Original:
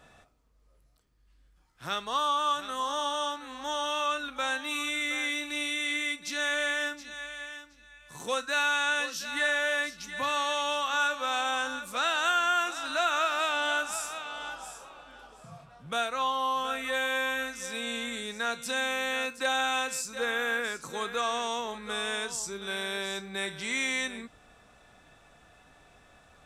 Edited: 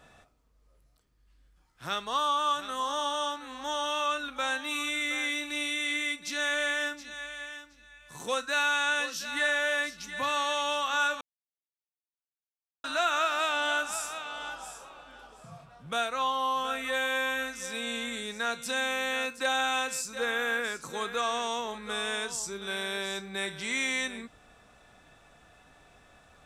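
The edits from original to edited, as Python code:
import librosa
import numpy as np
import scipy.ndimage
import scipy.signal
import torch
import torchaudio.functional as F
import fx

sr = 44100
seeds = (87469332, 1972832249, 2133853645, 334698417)

y = fx.edit(x, sr, fx.silence(start_s=11.21, length_s=1.63), tone=tone)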